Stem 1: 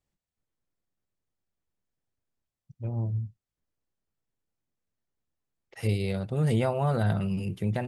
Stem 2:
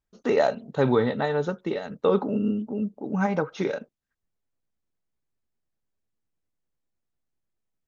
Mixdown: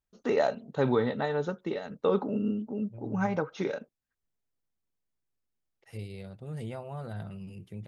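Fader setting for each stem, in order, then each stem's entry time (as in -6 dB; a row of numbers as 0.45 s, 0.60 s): -13.0 dB, -4.5 dB; 0.10 s, 0.00 s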